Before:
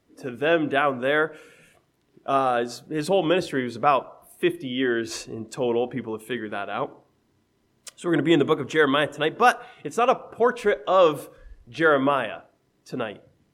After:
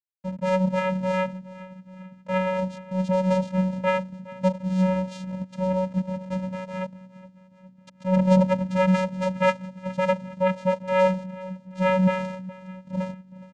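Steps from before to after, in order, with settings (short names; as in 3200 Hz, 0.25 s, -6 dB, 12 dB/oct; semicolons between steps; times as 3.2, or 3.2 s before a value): level-crossing sampler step -33 dBFS; frequency-shifting echo 0.414 s, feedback 56%, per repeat -110 Hz, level -18.5 dB; vocoder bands 4, square 186 Hz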